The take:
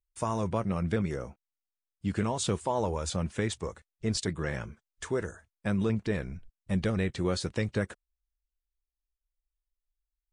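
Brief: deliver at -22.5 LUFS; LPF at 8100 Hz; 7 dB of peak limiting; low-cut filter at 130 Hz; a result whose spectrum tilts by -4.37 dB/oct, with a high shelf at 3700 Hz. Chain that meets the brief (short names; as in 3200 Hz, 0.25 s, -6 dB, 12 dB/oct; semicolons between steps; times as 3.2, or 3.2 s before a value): HPF 130 Hz; LPF 8100 Hz; high shelf 3700 Hz +9 dB; gain +11.5 dB; limiter -10 dBFS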